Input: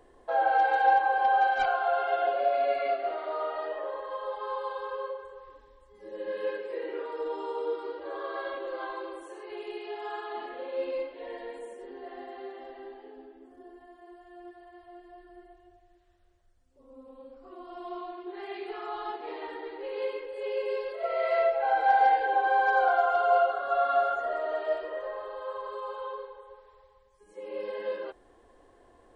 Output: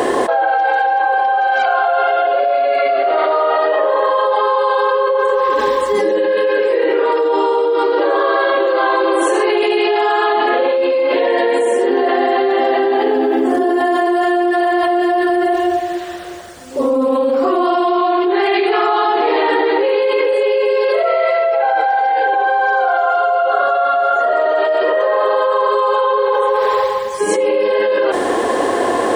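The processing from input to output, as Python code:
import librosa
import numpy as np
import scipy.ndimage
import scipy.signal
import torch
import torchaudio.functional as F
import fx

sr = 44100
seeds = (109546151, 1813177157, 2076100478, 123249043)

y = scipy.signal.sosfilt(scipy.signal.butter(2, 230.0, 'highpass', fs=sr, output='sos'), x)
y = fx.env_flatten(y, sr, amount_pct=100)
y = y * librosa.db_to_amplitude(4.0)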